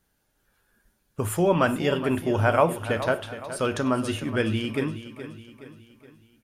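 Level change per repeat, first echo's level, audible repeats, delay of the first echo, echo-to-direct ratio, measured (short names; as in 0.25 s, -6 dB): -6.5 dB, -12.5 dB, 4, 0.42 s, -11.5 dB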